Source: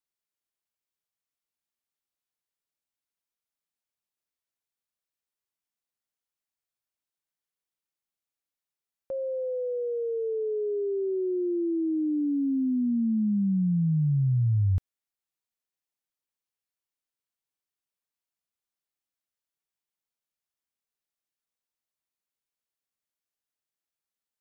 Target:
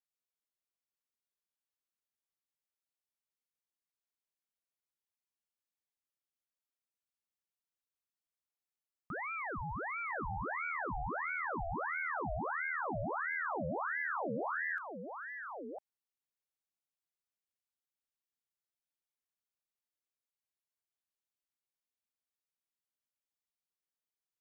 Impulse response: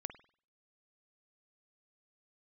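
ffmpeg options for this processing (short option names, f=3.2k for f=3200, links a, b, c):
-af "acompressor=threshold=-28dB:ratio=6,aecho=1:1:1004:0.447,aeval=exprs='val(0)*sin(2*PI*1100*n/s+1100*0.7/1.5*sin(2*PI*1.5*n/s))':c=same,volume=-5.5dB"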